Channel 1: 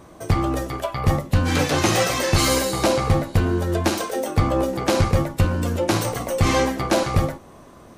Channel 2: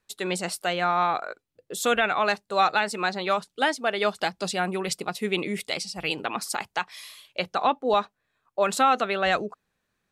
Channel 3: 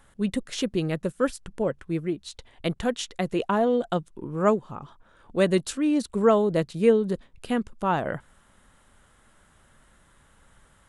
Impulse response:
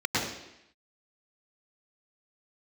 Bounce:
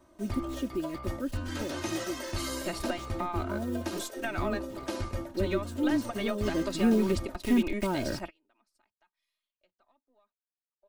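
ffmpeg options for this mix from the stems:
-filter_complex "[0:a]bandreject=f=2300:w=18,volume=0.141[s0];[1:a]aeval=exprs='if(lt(val(0),0),0.708*val(0),val(0))':c=same,acompressor=threshold=0.0398:ratio=6,highshelf=f=4600:g=-8,adelay=2250,volume=1[s1];[2:a]lowshelf=f=570:t=q:w=1.5:g=7,acrusher=bits=5:mix=0:aa=0.000001,aphaser=in_gain=1:out_gain=1:delay=1.3:decay=0.29:speed=0.19:type=triangular,volume=0.501,afade=t=in:st=6.37:d=0.66:silence=0.237137,asplit=2[s2][s3];[s3]apad=whole_len=545181[s4];[s1][s4]sidechaingate=range=0.0112:threshold=0.00631:ratio=16:detection=peak[s5];[s0][s5][s2]amix=inputs=3:normalize=0,aecho=1:1:3.2:0.73,acrossover=split=330[s6][s7];[s7]acompressor=threshold=0.0282:ratio=5[s8];[s6][s8]amix=inputs=2:normalize=0"

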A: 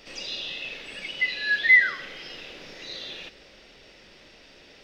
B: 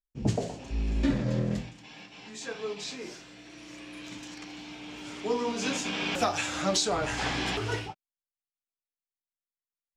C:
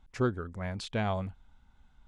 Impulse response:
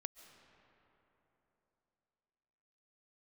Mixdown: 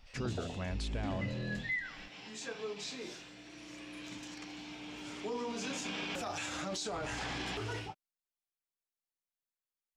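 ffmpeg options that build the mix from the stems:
-filter_complex "[0:a]highpass=f=560:w=0.5412,highpass=f=560:w=1.3066,volume=0.158[s0];[1:a]alimiter=limit=0.0631:level=0:latency=1:release=16,volume=0.668[s1];[2:a]alimiter=level_in=1.5:limit=0.0631:level=0:latency=1,volume=0.668,volume=1.06[s2];[s0][s1][s2]amix=inputs=3:normalize=0,acompressor=threshold=0.01:ratio=1.5"

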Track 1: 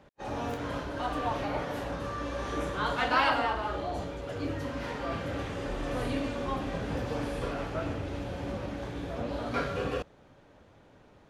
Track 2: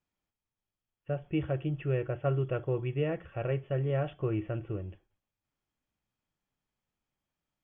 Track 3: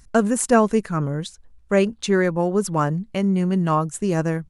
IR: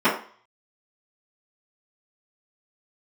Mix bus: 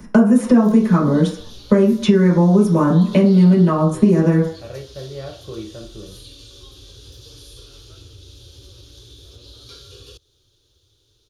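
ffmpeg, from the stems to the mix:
-filter_complex "[0:a]firequalizer=gain_entry='entry(110,0);entry(190,-27);entry(370,-3);entry(670,-25);entry(1300,-13);entry(2000,-19);entry(3500,13)':delay=0.05:min_phase=1,acompressor=threshold=0.01:ratio=2,adelay=150,volume=0.891[s0];[1:a]adelay=1250,volume=0.596,asplit=2[s1][s2];[s2]volume=0.1[s3];[2:a]lowshelf=f=400:g=8,acrossover=split=120[s4][s5];[s5]acompressor=threshold=0.112:ratio=6[s6];[s4][s6]amix=inputs=2:normalize=0,volume=1.26,asplit=2[s7][s8];[s8]volume=0.473[s9];[3:a]atrim=start_sample=2205[s10];[s3][s9]amix=inputs=2:normalize=0[s11];[s11][s10]afir=irnorm=-1:irlink=0[s12];[s0][s1][s7][s12]amix=inputs=4:normalize=0,acrossover=split=320|5300[s13][s14][s15];[s13]acompressor=threshold=0.2:ratio=4[s16];[s14]acompressor=threshold=0.1:ratio=4[s17];[s15]acompressor=threshold=0.0158:ratio=4[s18];[s16][s17][s18]amix=inputs=3:normalize=0,bandreject=f=7800:w=5.3"

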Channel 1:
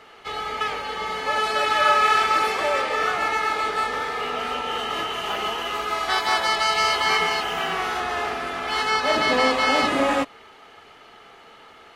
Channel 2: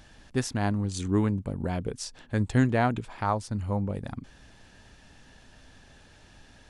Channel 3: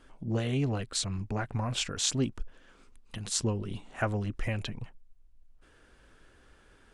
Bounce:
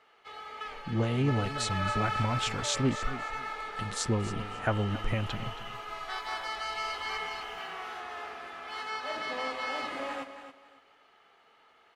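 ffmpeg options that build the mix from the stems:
-filter_complex "[0:a]lowshelf=f=410:g=-9.5,volume=0.237,asplit=2[s0][s1];[s1]volume=0.299[s2];[2:a]adelay=650,volume=1.19,asplit=2[s3][s4];[s4]volume=0.2[s5];[s2][s5]amix=inputs=2:normalize=0,aecho=0:1:273|546|819|1092:1|0.24|0.0576|0.0138[s6];[s0][s3][s6]amix=inputs=3:normalize=0,highshelf=f=3900:g=-7"

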